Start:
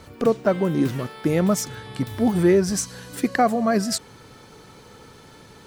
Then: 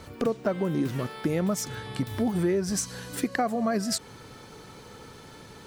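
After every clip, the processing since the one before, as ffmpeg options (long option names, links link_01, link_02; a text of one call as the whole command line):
ffmpeg -i in.wav -af "acompressor=threshold=-25dB:ratio=3" out.wav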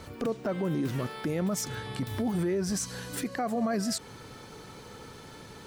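ffmpeg -i in.wav -af "alimiter=limit=-22.5dB:level=0:latency=1:release=17" out.wav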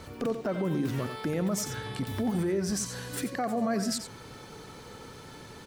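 ffmpeg -i in.wav -af "aecho=1:1:89:0.316" out.wav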